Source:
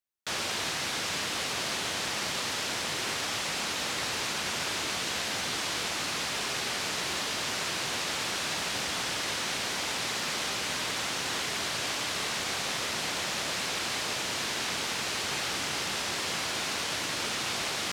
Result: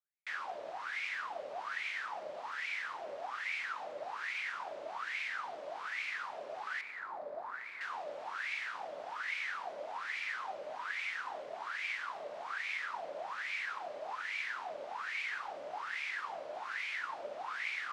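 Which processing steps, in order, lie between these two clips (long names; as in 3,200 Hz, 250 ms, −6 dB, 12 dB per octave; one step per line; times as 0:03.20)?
0:06.81–0:07.81: running median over 15 samples
LFO wah 1.2 Hz 570–2,300 Hz, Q 11
level +6.5 dB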